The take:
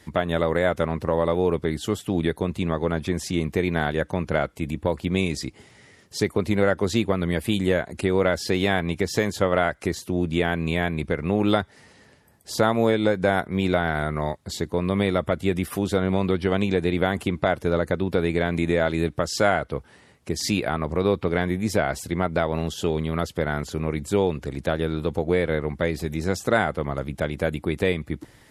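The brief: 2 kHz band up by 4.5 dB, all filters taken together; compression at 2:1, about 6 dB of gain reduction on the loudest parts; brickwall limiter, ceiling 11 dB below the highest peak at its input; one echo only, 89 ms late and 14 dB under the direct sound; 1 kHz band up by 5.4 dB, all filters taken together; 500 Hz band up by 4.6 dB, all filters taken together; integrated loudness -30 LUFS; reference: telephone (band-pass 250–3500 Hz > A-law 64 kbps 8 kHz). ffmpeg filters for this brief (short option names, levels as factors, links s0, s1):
-af "equalizer=f=500:t=o:g=4.5,equalizer=f=1000:t=o:g=5,equalizer=f=2000:t=o:g=4,acompressor=threshold=0.0794:ratio=2,alimiter=limit=0.178:level=0:latency=1,highpass=250,lowpass=3500,aecho=1:1:89:0.2" -ar 8000 -c:a pcm_alaw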